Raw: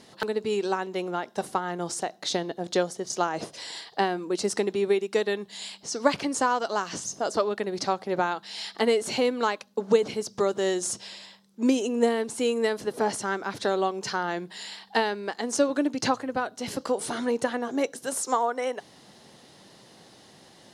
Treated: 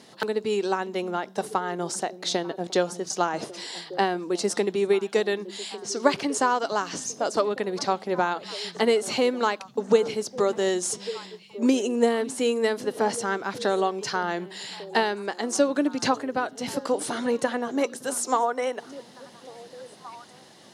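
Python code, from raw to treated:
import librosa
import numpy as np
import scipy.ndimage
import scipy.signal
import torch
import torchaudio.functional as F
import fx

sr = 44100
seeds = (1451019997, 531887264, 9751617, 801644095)

y = scipy.signal.sosfilt(scipy.signal.butter(2, 120.0, 'highpass', fs=sr, output='sos'), x)
y = fx.echo_stepped(y, sr, ms=574, hz=160.0, octaves=1.4, feedback_pct=70, wet_db=-11.0)
y = y * librosa.db_to_amplitude(1.5)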